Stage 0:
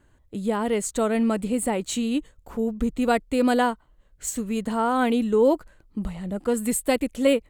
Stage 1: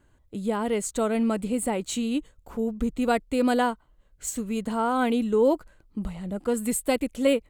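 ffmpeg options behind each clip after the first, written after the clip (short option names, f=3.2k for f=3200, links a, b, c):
-af "bandreject=f=1.8k:w=18,volume=-2dB"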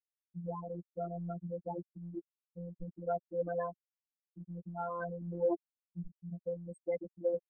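-af "afftfilt=real='re*gte(hypot(re,im),0.251)':imag='im*gte(hypot(re,im),0.251)':win_size=1024:overlap=0.75,afftfilt=real='hypot(re,im)*cos(PI*b)':imag='0':win_size=1024:overlap=0.75,adynamicsmooth=sensitivity=0.5:basefreq=4k,volume=-6.5dB"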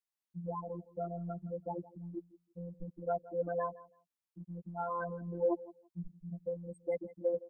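-af "equalizer=f=1k:t=o:w=0.29:g=5,aecho=1:1:166|332:0.112|0.0191"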